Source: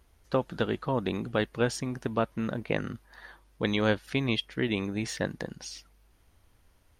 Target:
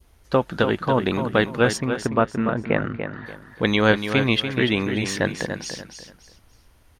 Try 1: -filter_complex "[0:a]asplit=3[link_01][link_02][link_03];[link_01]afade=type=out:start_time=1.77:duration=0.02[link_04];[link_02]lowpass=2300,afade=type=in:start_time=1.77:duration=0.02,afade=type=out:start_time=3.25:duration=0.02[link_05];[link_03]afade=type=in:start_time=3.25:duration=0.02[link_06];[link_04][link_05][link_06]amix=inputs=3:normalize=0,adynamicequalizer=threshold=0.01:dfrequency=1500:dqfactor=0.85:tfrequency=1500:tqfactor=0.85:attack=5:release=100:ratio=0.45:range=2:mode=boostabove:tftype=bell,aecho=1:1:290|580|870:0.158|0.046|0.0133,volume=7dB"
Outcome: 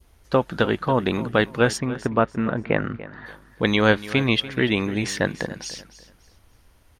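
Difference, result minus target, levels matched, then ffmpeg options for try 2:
echo-to-direct −8 dB
-filter_complex "[0:a]asplit=3[link_01][link_02][link_03];[link_01]afade=type=out:start_time=1.77:duration=0.02[link_04];[link_02]lowpass=2300,afade=type=in:start_time=1.77:duration=0.02,afade=type=out:start_time=3.25:duration=0.02[link_05];[link_03]afade=type=in:start_time=3.25:duration=0.02[link_06];[link_04][link_05][link_06]amix=inputs=3:normalize=0,adynamicequalizer=threshold=0.01:dfrequency=1500:dqfactor=0.85:tfrequency=1500:tqfactor=0.85:attack=5:release=100:ratio=0.45:range=2:mode=boostabove:tftype=bell,aecho=1:1:290|580|870:0.398|0.115|0.0335,volume=7dB"

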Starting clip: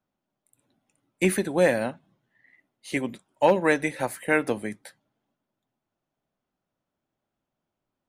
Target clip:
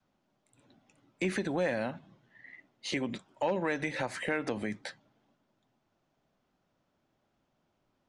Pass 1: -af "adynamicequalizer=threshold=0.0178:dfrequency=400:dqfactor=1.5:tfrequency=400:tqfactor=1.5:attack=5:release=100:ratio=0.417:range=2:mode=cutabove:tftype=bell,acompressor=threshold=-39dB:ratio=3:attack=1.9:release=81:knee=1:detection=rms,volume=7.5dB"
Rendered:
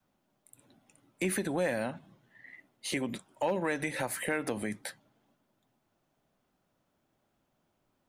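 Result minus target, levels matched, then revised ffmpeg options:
8,000 Hz band +8.5 dB
-af "adynamicequalizer=threshold=0.0178:dfrequency=400:dqfactor=1.5:tfrequency=400:tqfactor=1.5:attack=5:release=100:ratio=0.417:range=2:mode=cutabove:tftype=bell,lowpass=frequency=6600:width=0.5412,lowpass=frequency=6600:width=1.3066,acompressor=threshold=-39dB:ratio=3:attack=1.9:release=81:knee=1:detection=rms,volume=7.5dB"

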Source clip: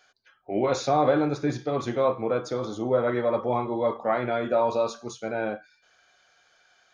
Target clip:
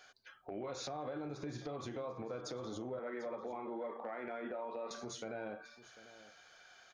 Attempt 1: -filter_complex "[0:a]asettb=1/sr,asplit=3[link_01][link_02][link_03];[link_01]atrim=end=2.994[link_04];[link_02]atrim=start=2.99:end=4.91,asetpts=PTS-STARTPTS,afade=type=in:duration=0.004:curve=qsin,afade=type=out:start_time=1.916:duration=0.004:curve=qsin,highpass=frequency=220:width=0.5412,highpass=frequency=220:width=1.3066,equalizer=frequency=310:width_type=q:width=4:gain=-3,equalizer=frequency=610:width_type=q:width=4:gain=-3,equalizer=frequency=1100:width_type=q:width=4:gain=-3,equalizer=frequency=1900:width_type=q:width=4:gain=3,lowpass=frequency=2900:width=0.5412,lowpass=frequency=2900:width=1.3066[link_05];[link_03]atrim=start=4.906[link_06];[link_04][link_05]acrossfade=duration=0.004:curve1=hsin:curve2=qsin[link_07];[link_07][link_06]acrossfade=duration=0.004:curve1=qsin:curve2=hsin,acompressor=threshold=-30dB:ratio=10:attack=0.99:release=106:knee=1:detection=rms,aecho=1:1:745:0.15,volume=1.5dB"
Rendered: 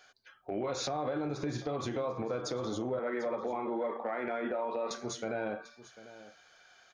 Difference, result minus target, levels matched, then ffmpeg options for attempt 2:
downward compressor: peak gain reduction −8 dB
-filter_complex "[0:a]asettb=1/sr,asplit=3[link_01][link_02][link_03];[link_01]atrim=end=2.994[link_04];[link_02]atrim=start=2.99:end=4.91,asetpts=PTS-STARTPTS,afade=type=in:duration=0.004:curve=qsin,afade=type=out:start_time=1.916:duration=0.004:curve=qsin,highpass=frequency=220:width=0.5412,highpass=frequency=220:width=1.3066,equalizer=frequency=310:width_type=q:width=4:gain=-3,equalizer=frequency=610:width_type=q:width=4:gain=-3,equalizer=frequency=1100:width_type=q:width=4:gain=-3,equalizer=frequency=1900:width_type=q:width=4:gain=3,lowpass=frequency=2900:width=0.5412,lowpass=frequency=2900:width=1.3066[link_05];[link_03]atrim=start=4.906[link_06];[link_04][link_05]acrossfade=duration=0.004:curve1=hsin:curve2=qsin[link_07];[link_07][link_06]acrossfade=duration=0.004:curve1=qsin:curve2=hsin,acompressor=threshold=-39dB:ratio=10:attack=0.99:release=106:knee=1:detection=rms,aecho=1:1:745:0.15,volume=1.5dB"

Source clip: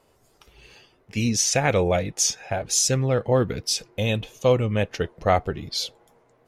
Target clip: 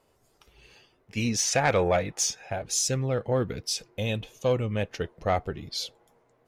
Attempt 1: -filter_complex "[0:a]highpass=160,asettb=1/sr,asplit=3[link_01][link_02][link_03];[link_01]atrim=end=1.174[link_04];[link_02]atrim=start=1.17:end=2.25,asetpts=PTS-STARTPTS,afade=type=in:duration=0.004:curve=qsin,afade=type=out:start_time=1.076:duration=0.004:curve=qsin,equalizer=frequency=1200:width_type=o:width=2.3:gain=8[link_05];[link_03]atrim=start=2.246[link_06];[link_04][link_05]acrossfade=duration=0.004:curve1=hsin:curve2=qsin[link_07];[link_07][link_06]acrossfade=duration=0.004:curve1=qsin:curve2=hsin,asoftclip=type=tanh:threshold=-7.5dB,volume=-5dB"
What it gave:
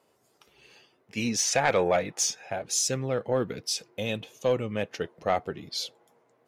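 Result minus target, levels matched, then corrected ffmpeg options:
125 Hz band −5.5 dB
-filter_complex "[0:a]asettb=1/sr,asplit=3[link_01][link_02][link_03];[link_01]atrim=end=1.174[link_04];[link_02]atrim=start=1.17:end=2.25,asetpts=PTS-STARTPTS,afade=type=in:duration=0.004:curve=qsin,afade=type=out:start_time=1.076:duration=0.004:curve=qsin,equalizer=frequency=1200:width_type=o:width=2.3:gain=8[link_05];[link_03]atrim=start=2.246[link_06];[link_04][link_05]acrossfade=duration=0.004:curve1=hsin:curve2=qsin[link_07];[link_07][link_06]acrossfade=duration=0.004:curve1=qsin:curve2=hsin,asoftclip=type=tanh:threshold=-7.5dB,volume=-5dB"

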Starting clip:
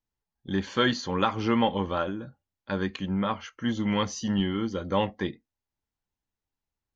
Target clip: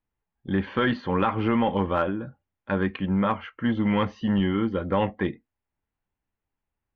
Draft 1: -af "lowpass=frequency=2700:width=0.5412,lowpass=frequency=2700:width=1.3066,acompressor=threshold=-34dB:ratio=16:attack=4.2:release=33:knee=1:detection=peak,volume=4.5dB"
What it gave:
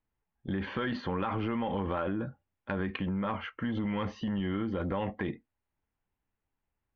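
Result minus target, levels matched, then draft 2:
downward compressor: peak gain reduction +10 dB
-af "lowpass=frequency=2700:width=0.5412,lowpass=frequency=2700:width=1.3066,acompressor=threshold=-23.5dB:ratio=16:attack=4.2:release=33:knee=1:detection=peak,volume=4.5dB"

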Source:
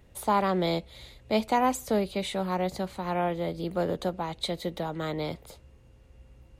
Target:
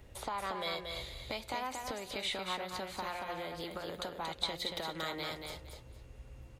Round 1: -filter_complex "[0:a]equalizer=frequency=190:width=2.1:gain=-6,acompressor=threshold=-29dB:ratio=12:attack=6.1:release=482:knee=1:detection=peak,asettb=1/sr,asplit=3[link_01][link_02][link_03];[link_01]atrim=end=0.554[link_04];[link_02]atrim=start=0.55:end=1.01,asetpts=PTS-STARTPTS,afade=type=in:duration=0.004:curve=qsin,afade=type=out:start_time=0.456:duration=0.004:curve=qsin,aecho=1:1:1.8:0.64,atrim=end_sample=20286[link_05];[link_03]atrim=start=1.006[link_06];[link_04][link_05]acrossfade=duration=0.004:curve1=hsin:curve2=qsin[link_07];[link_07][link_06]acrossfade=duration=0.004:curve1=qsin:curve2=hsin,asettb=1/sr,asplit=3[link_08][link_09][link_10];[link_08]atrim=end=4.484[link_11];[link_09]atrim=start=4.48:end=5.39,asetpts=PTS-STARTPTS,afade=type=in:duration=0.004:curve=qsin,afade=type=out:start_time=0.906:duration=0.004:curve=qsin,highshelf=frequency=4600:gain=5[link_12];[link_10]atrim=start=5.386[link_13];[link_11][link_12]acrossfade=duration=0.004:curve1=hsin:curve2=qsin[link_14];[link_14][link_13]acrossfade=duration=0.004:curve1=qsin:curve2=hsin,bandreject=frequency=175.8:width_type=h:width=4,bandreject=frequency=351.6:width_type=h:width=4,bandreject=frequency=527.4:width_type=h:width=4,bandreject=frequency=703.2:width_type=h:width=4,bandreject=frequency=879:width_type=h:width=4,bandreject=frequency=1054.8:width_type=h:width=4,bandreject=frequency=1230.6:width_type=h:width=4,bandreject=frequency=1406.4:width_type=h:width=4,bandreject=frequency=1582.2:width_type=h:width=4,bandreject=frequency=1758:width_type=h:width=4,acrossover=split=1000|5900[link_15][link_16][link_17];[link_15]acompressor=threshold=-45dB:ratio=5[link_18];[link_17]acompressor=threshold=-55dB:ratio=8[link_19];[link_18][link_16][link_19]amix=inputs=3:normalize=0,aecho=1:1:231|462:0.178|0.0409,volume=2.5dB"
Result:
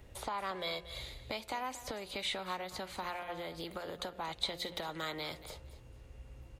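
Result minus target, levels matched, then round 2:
echo-to-direct −10 dB
-filter_complex "[0:a]equalizer=frequency=190:width=2.1:gain=-6,acompressor=threshold=-29dB:ratio=12:attack=6.1:release=482:knee=1:detection=peak,asettb=1/sr,asplit=3[link_01][link_02][link_03];[link_01]atrim=end=0.554[link_04];[link_02]atrim=start=0.55:end=1.01,asetpts=PTS-STARTPTS,afade=type=in:duration=0.004:curve=qsin,afade=type=out:start_time=0.456:duration=0.004:curve=qsin,aecho=1:1:1.8:0.64,atrim=end_sample=20286[link_05];[link_03]atrim=start=1.006[link_06];[link_04][link_05]acrossfade=duration=0.004:curve1=hsin:curve2=qsin[link_07];[link_07][link_06]acrossfade=duration=0.004:curve1=qsin:curve2=hsin,asettb=1/sr,asplit=3[link_08][link_09][link_10];[link_08]atrim=end=4.484[link_11];[link_09]atrim=start=4.48:end=5.39,asetpts=PTS-STARTPTS,afade=type=in:duration=0.004:curve=qsin,afade=type=out:start_time=0.906:duration=0.004:curve=qsin,highshelf=frequency=4600:gain=5[link_12];[link_10]atrim=start=5.386[link_13];[link_11][link_12]acrossfade=duration=0.004:curve1=hsin:curve2=qsin[link_14];[link_14][link_13]acrossfade=duration=0.004:curve1=qsin:curve2=hsin,bandreject=frequency=175.8:width_type=h:width=4,bandreject=frequency=351.6:width_type=h:width=4,bandreject=frequency=527.4:width_type=h:width=4,bandreject=frequency=703.2:width_type=h:width=4,bandreject=frequency=879:width_type=h:width=4,bandreject=frequency=1054.8:width_type=h:width=4,bandreject=frequency=1230.6:width_type=h:width=4,bandreject=frequency=1406.4:width_type=h:width=4,bandreject=frequency=1582.2:width_type=h:width=4,bandreject=frequency=1758:width_type=h:width=4,acrossover=split=1000|5900[link_15][link_16][link_17];[link_15]acompressor=threshold=-45dB:ratio=5[link_18];[link_17]acompressor=threshold=-55dB:ratio=8[link_19];[link_18][link_16][link_19]amix=inputs=3:normalize=0,aecho=1:1:231|462|693:0.562|0.129|0.0297,volume=2.5dB"

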